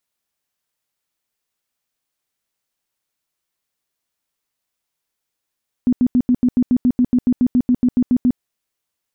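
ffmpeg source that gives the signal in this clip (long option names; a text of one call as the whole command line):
ffmpeg -f lavfi -i "aevalsrc='0.299*sin(2*PI*248*mod(t,0.14))*lt(mod(t,0.14),14/248)':duration=2.52:sample_rate=44100" out.wav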